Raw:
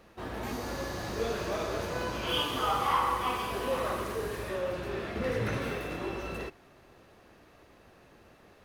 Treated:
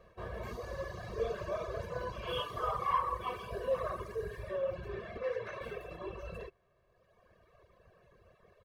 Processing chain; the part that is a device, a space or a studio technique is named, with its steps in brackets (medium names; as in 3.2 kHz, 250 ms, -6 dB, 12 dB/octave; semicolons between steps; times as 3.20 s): reverb removal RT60 1.9 s; through cloth (treble shelf 2.7 kHz -12 dB); comb 1.8 ms, depth 95%; 5.17–5.61 s: three-band isolator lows -19 dB, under 360 Hz, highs -13 dB, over 6.3 kHz; trim -4.5 dB